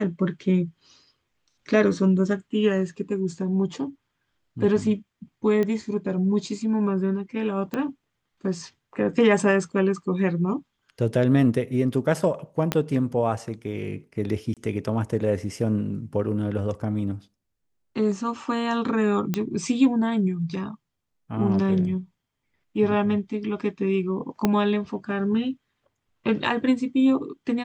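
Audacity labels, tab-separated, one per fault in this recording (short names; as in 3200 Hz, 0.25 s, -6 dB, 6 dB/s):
5.630000	5.630000	pop -15 dBFS
7.740000	7.740000	pop -16 dBFS
12.720000	12.720000	pop -8 dBFS
14.540000	14.570000	gap 27 ms
19.340000	19.340000	pop -11 dBFS
24.450000	24.450000	pop -7 dBFS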